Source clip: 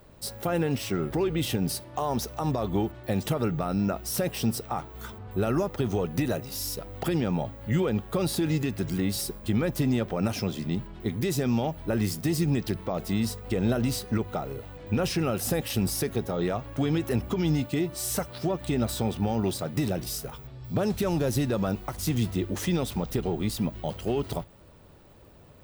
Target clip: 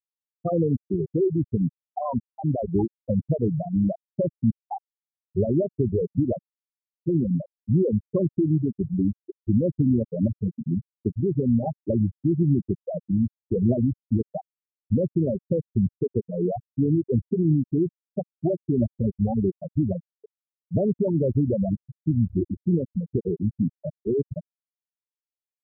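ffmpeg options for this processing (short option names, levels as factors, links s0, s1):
-filter_complex "[0:a]asplit=2[s0][s1];[s1]adelay=337,lowpass=f=2000:p=1,volume=0.1,asplit=2[s2][s3];[s3]adelay=337,lowpass=f=2000:p=1,volume=0.39,asplit=2[s4][s5];[s5]adelay=337,lowpass=f=2000:p=1,volume=0.39[s6];[s2][s4][s6]amix=inputs=3:normalize=0[s7];[s0][s7]amix=inputs=2:normalize=0,afftfilt=real='re*gte(hypot(re,im),0.224)':imag='im*gte(hypot(re,im),0.224)':win_size=1024:overlap=0.75,volume=1.78"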